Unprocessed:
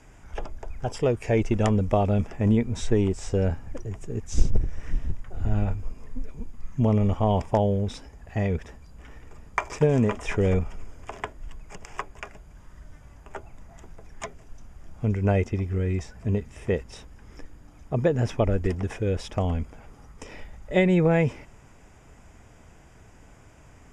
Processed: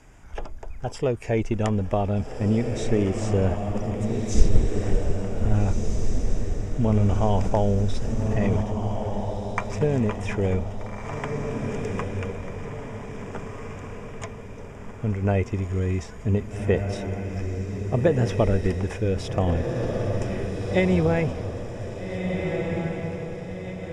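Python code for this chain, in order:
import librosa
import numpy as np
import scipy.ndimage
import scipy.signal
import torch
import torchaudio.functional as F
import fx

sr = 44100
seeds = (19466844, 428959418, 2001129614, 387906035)

p1 = fx.rider(x, sr, range_db=4, speed_s=2.0)
p2 = p1 + fx.echo_diffused(p1, sr, ms=1669, feedback_pct=48, wet_db=-4.0, dry=0)
y = fx.env_flatten(p2, sr, amount_pct=50, at=(6.92, 8.61))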